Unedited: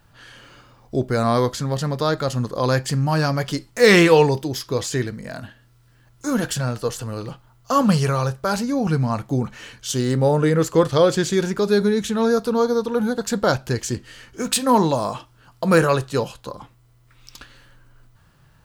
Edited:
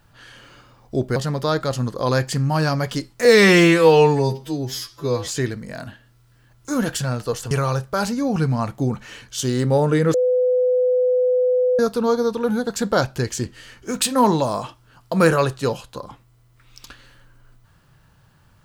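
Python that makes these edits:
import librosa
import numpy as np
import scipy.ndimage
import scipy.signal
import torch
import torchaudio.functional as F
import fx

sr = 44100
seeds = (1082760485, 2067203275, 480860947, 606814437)

y = fx.edit(x, sr, fx.cut(start_s=1.16, length_s=0.57),
    fx.stretch_span(start_s=3.82, length_s=1.01, factor=2.0),
    fx.cut(start_s=7.07, length_s=0.95),
    fx.bleep(start_s=10.65, length_s=1.65, hz=502.0, db=-14.5), tone=tone)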